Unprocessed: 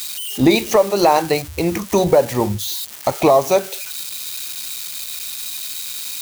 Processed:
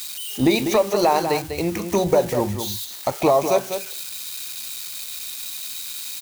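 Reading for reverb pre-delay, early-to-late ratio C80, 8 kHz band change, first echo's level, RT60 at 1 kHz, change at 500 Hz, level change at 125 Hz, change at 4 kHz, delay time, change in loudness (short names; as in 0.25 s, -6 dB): none, none, -4.0 dB, -8.0 dB, none, -4.0 dB, -4.0 dB, -4.0 dB, 0.197 s, -4.0 dB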